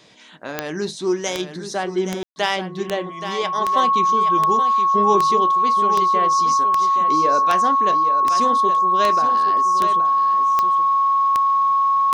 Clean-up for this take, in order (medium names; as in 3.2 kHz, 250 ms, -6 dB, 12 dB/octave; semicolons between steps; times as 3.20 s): de-click; band-stop 1.1 kHz, Q 30; room tone fill 2.23–2.36 s; inverse comb 823 ms -9.5 dB